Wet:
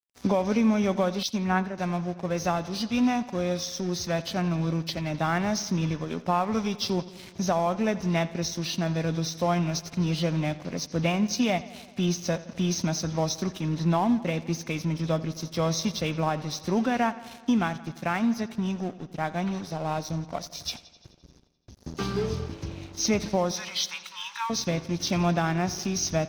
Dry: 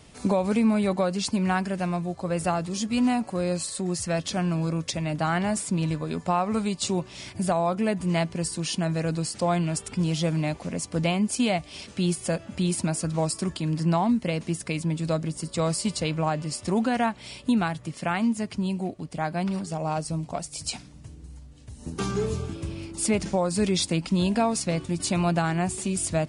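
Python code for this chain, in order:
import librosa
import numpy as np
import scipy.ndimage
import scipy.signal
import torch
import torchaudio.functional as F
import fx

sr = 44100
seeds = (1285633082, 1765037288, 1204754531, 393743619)

y = fx.freq_compress(x, sr, knee_hz=2500.0, ratio=1.5)
y = fx.high_shelf(y, sr, hz=7000.0, db=7.5)
y = np.sign(y) * np.maximum(np.abs(y) - 10.0 ** (-41.0 / 20.0), 0.0)
y = fx.brickwall_highpass(y, sr, low_hz=810.0, at=(23.51, 24.5))
y = fx.echo_bbd(y, sr, ms=86, stages=4096, feedback_pct=68, wet_db=-18)
y = fx.band_widen(y, sr, depth_pct=100, at=(1.23, 1.78))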